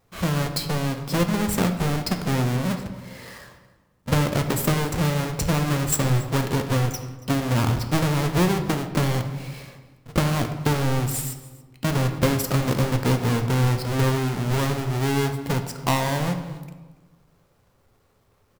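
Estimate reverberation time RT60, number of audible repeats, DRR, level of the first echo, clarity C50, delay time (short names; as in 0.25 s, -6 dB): 1.3 s, 1, 6.0 dB, -20.5 dB, 9.0 dB, 0.281 s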